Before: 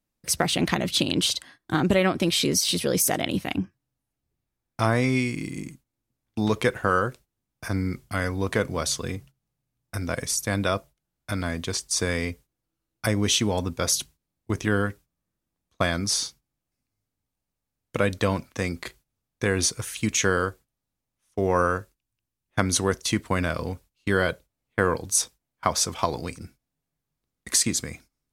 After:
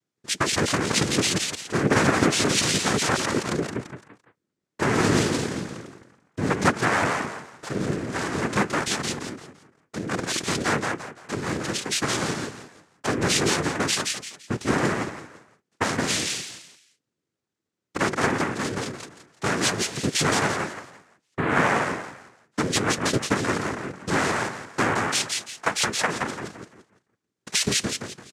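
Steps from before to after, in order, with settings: frequency-shifting echo 0.17 s, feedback 31%, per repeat +64 Hz, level -3.5 dB; noise vocoder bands 3; Doppler distortion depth 0.22 ms

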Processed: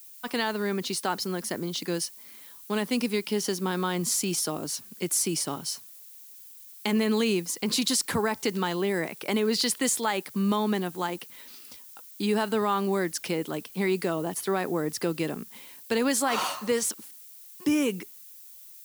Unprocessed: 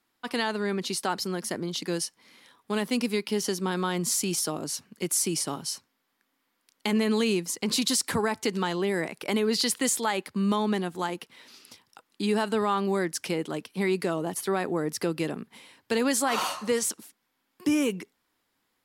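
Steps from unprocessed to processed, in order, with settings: expander -56 dBFS; added noise violet -48 dBFS

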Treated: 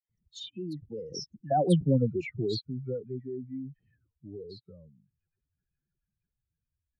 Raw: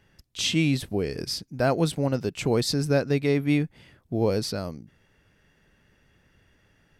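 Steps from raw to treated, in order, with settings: spectral contrast raised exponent 2.9; Doppler pass-by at 1.75, 39 m/s, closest 7.5 m; dispersion lows, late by 94 ms, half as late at 1700 Hz; gain +3 dB

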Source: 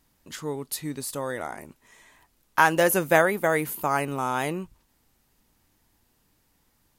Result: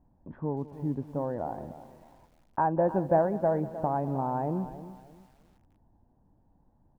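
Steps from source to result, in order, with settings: block floating point 5-bit; comb 1.2 ms, depth 47%; in parallel at +3 dB: compressor 12:1, threshold -31 dBFS, peak gain reduction 20 dB; on the sum: Bessel low-pass 540 Hz, order 4; low shelf 240 Hz -5.5 dB; feedback echo 0.194 s, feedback 37%, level -18 dB; lo-fi delay 0.309 s, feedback 35%, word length 9-bit, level -14 dB

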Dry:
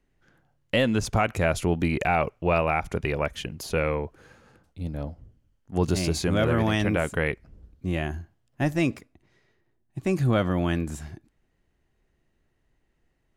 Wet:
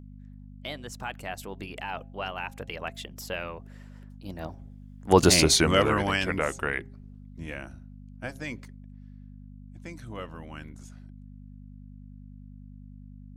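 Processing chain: Doppler pass-by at 5.27, 40 m/s, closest 13 m; low shelf 470 Hz -8 dB; de-hum 134.4 Hz, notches 6; buzz 50 Hz, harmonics 5, -55 dBFS -4 dB/oct; harmonic-percussive split percussive +8 dB; gain +6 dB

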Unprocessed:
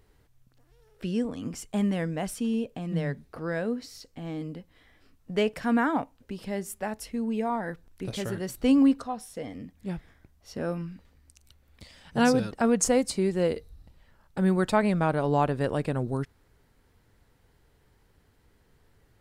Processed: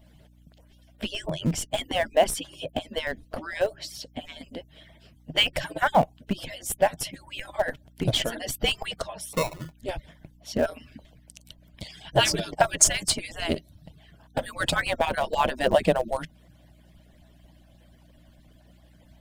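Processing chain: median-filter separation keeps percussive; thirty-one-band EQ 160 Hz +9 dB, 400 Hz -4 dB, 630 Hz +10 dB, 1250 Hz -8 dB, 3150 Hz +9 dB; in parallel at -7 dB: Schmitt trigger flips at -30 dBFS; 9.33–9.74 on the sum: sample-rate reducer 1600 Hz, jitter 0%; hum 60 Hz, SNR 27 dB; gain +8.5 dB

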